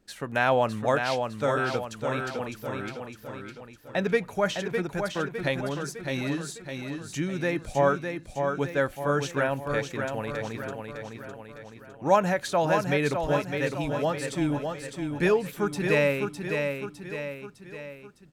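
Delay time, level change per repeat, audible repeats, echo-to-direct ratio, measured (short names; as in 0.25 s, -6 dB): 0.607 s, -6.0 dB, 4, -4.5 dB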